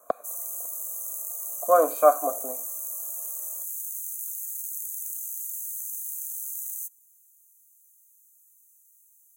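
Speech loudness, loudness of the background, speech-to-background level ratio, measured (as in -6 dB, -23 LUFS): -23.0 LUFS, -31.5 LUFS, 8.5 dB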